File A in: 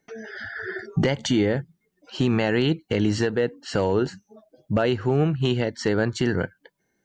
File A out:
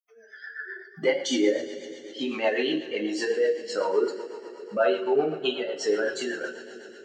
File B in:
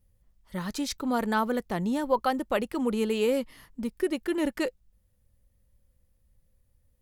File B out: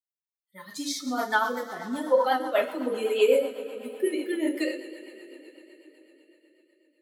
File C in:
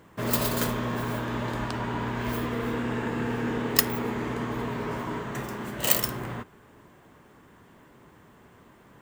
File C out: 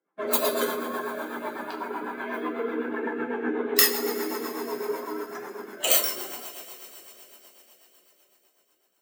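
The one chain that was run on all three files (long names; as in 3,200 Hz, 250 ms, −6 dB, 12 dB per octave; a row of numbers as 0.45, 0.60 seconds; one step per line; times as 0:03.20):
spectral dynamics exaggerated over time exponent 2
high-pass filter 320 Hz 24 dB per octave
coupled-rooms reverb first 0.42 s, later 4.6 s, from −19 dB, DRR −2 dB
rotating-speaker cabinet horn 8 Hz
loudness normalisation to −27 LKFS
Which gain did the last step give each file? +2.5, +6.0, +6.5 decibels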